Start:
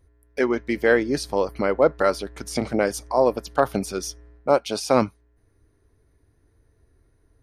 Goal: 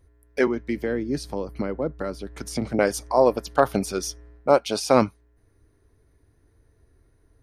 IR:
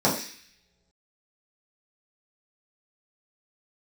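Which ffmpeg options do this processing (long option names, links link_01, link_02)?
-filter_complex "[0:a]asettb=1/sr,asplit=3[link_01][link_02][link_03];[link_01]atrim=end=0.474[link_04];[link_02]atrim=start=0.47:end=2.79,asetpts=PTS-STARTPTS,afade=type=in:duration=0.004:curve=qsin,afade=type=out:start_time=2.316:duration=0.004:curve=qsin,acrossover=split=310[link_05][link_06];[link_06]acompressor=threshold=-34dB:ratio=4[link_07];[link_05][link_07]amix=inputs=2:normalize=0[link_08];[link_03]atrim=start=2.786[link_09];[link_04][link_08]acrossfade=duration=0.004:curve1=hsin:curve2=qsin[link_10];[link_10][link_09]acrossfade=duration=0.004:curve1=qsin:curve2=hsin,volume=1dB"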